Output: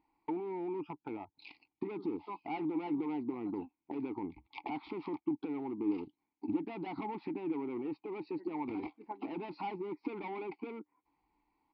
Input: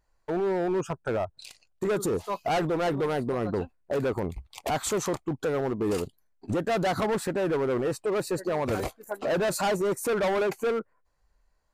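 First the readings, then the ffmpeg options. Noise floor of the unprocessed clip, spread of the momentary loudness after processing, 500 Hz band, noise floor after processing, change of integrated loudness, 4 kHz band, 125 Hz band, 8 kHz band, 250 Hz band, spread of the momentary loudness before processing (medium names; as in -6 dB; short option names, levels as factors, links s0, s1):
-69 dBFS, 9 LU, -15.5 dB, under -85 dBFS, -11.0 dB, -19.5 dB, -18.0 dB, under -40 dB, -5.0 dB, 7 LU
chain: -filter_complex "[0:a]acompressor=threshold=0.0112:ratio=10,asplit=3[s0][s1][s2];[s0]bandpass=f=300:t=q:w=8,volume=1[s3];[s1]bandpass=f=870:t=q:w=8,volume=0.501[s4];[s2]bandpass=f=2240:t=q:w=8,volume=0.355[s5];[s3][s4][s5]amix=inputs=3:normalize=0,aresample=11025,aresample=44100,volume=5.62"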